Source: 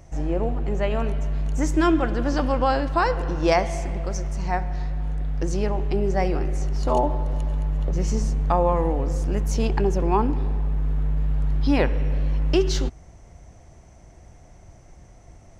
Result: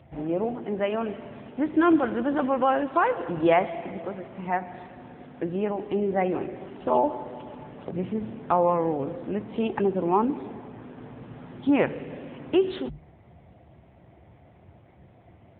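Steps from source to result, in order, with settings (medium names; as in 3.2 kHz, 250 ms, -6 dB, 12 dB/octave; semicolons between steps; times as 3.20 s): hum notches 50/100/150 Hz; AMR-NB 7.95 kbps 8 kHz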